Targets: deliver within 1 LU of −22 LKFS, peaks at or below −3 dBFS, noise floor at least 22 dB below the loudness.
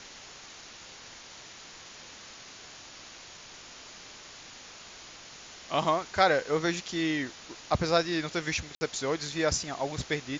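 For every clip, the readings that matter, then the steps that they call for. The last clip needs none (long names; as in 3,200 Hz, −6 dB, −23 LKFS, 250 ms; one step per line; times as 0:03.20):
number of dropouts 1; longest dropout 60 ms; background noise floor −48 dBFS; target noise floor −51 dBFS; integrated loudness −29.0 LKFS; sample peak −9.0 dBFS; target loudness −22.0 LKFS
→ repair the gap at 0:08.75, 60 ms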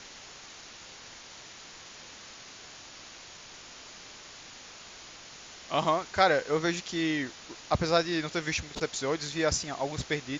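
number of dropouts 0; background noise floor −48 dBFS; target noise floor −51 dBFS
→ broadband denoise 6 dB, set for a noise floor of −48 dBFS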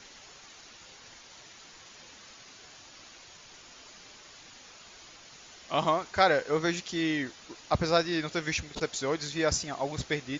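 background noise floor −52 dBFS; integrated loudness −29.5 LKFS; sample peak −9.0 dBFS; target loudness −22.0 LKFS
→ level +7.5 dB
brickwall limiter −3 dBFS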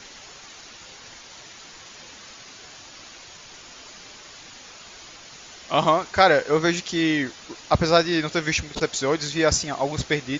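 integrated loudness −22.0 LKFS; sample peak −3.0 dBFS; background noise floor −45 dBFS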